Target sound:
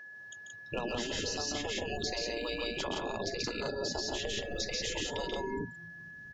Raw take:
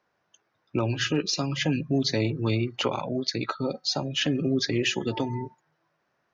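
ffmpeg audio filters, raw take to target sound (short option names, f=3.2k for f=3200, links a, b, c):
-filter_complex "[0:a]aecho=1:1:134.1|172:0.501|0.794,asetrate=46722,aresample=44100,atempo=0.943874,asubboost=boost=10.5:cutoff=180,afftfilt=real='re*lt(hypot(re,im),0.2)':imag='im*lt(hypot(re,im),0.2)':win_size=1024:overlap=0.75,acrossover=split=170|1500[a][b][c];[c]alimiter=level_in=2.5dB:limit=-24dB:level=0:latency=1,volume=-2.5dB[d];[a][b][d]amix=inputs=3:normalize=0,equalizer=f=1.5k:t=o:w=1.3:g=-13,acompressor=threshold=-41dB:ratio=10,aeval=exprs='val(0)+0.00178*sin(2*PI*1700*n/s)':c=same,volume=9dB"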